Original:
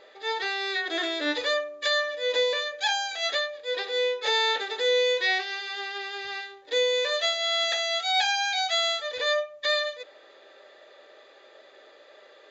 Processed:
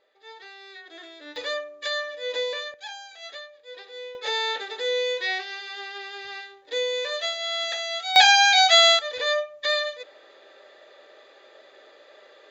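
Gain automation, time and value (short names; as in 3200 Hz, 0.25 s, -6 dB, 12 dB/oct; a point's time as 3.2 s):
-15.5 dB
from 1.36 s -3.5 dB
from 2.74 s -12.5 dB
from 4.15 s -2.5 dB
from 8.16 s +10 dB
from 8.99 s +1 dB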